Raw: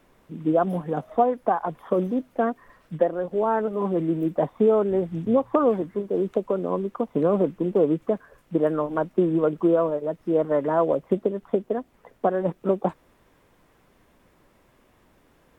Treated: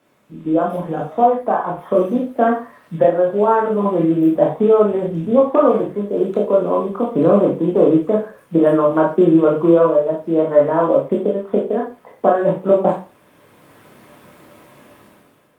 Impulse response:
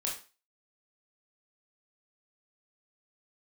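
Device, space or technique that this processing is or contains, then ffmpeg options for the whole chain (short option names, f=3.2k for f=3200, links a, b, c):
far-field microphone of a smart speaker: -filter_complex "[1:a]atrim=start_sample=2205[a];[0:a][a]afir=irnorm=-1:irlink=0,highpass=f=98:w=0.5412,highpass=f=98:w=1.3066,dynaudnorm=f=140:g=9:m=15dB,volume=-1dB" -ar 48000 -c:a libopus -b:a 48k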